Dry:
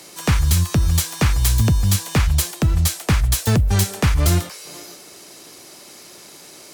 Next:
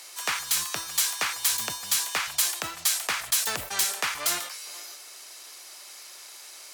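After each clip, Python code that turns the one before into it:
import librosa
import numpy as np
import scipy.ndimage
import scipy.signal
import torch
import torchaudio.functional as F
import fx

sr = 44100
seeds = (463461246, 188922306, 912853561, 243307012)

y = scipy.signal.sosfilt(scipy.signal.butter(2, 960.0, 'highpass', fs=sr, output='sos'), x)
y = fx.sustainer(y, sr, db_per_s=91.0)
y = y * librosa.db_to_amplitude(-2.0)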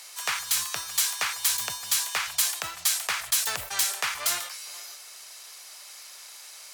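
y = fx.peak_eq(x, sr, hz=270.0, db=-11.0, octaves=1.3)
y = fx.quant_float(y, sr, bits=4)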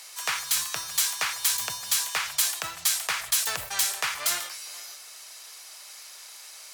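y = fx.room_shoebox(x, sr, seeds[0], volume_m3=3500.0, walls='furnished', distance_m=0.61)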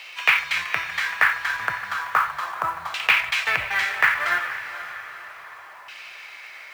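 y = fx.filter_lfo_lowpass(x, sr, shape='saw_down', hz=0.34, low_hz=990.0, high_hz=2700.0, q=4.1)
y = fx.quant_companded(y, sr, bits=6)
y = fx.echo_diffused(y, sr, ms=497, feedback_pct=48, wet_db=-12.5)
y = y * librosa.db_to_amplitude(4.5)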